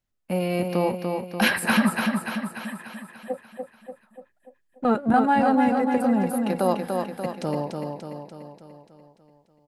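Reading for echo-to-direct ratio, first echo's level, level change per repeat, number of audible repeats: -3.0 dB, -4.5 dB, -5.0 dB, 7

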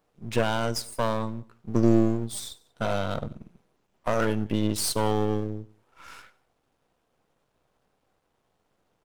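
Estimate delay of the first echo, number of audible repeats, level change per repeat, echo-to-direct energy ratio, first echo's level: 94 ms, 2, -4.5 dB, -21.5 dB, -23.0 dB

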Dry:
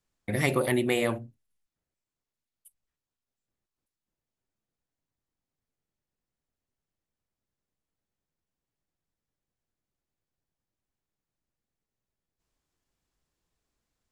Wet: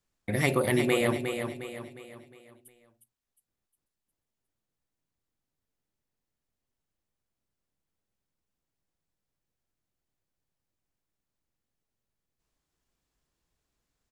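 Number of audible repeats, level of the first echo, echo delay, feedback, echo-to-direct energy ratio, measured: 4, -7.0 dB, 0.358 s, 43%, -6.0 dB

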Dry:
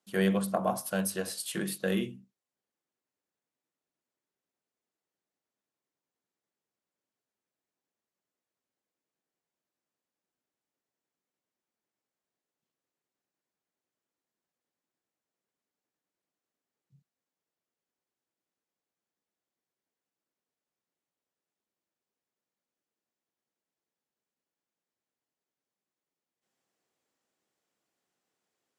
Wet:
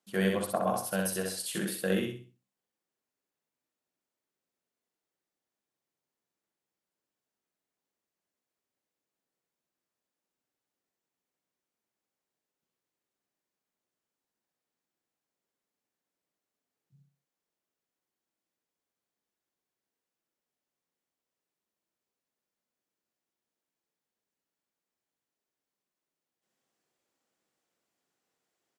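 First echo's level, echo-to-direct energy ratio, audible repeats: -3.5 dB, -3.0 dB, 4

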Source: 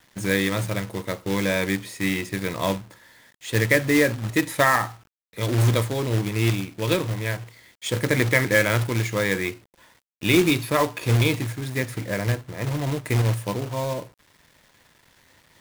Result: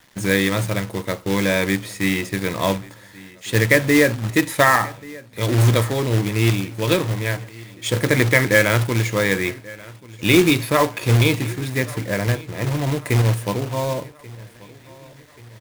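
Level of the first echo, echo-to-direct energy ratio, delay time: -21.5 dB, -20.0 dB, 1.135 s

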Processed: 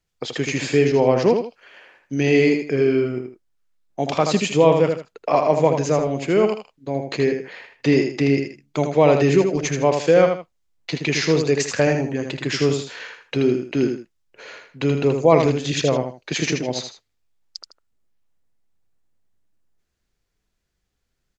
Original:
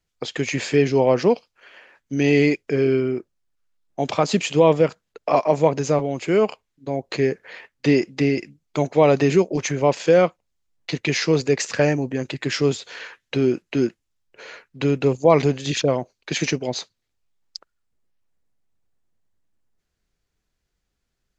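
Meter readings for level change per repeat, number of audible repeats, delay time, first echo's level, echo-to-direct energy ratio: -11.0 dB, 2, 79 ms, -6.0 dB, -5.5 dB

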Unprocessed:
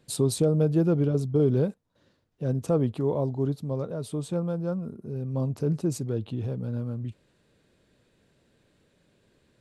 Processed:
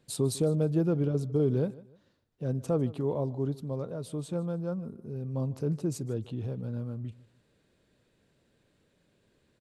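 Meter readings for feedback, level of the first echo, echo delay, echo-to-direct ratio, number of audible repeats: 31%, -20.0 dB, 0.152 s, -19.5 dB, 2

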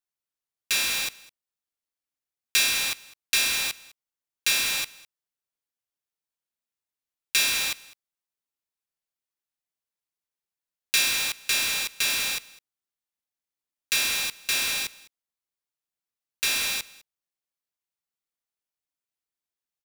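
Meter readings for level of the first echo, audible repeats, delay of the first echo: -22.0 dB, 1, 0.205 s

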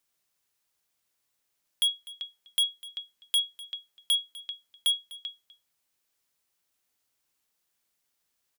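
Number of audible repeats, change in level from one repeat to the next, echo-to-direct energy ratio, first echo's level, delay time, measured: 1, no steady repeat, -19.0 dB, -19.0 dB, 0.25 s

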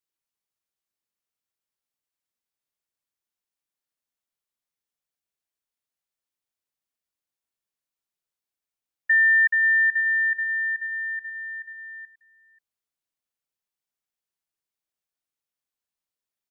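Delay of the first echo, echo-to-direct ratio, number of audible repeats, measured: 0.535 s, -18.0 dB, 1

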